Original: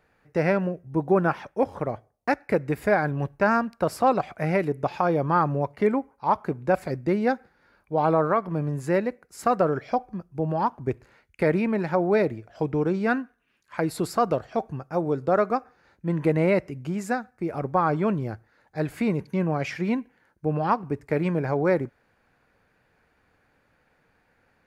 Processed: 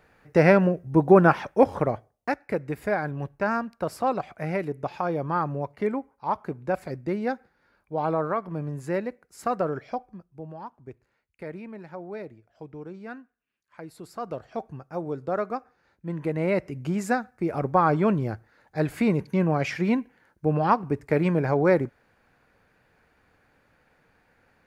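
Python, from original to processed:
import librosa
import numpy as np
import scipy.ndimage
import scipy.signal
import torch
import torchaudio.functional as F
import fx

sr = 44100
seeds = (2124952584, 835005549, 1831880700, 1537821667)

y = fx.gain(x, sr, db=fx.line((1.76, 5.5), (2.38, -4.5), (9.8, -4.5), (10.64, -15.5), (14.03, -15.5), (14.49, -6.0), (16.32, -6.0), (16.83, 2.0)))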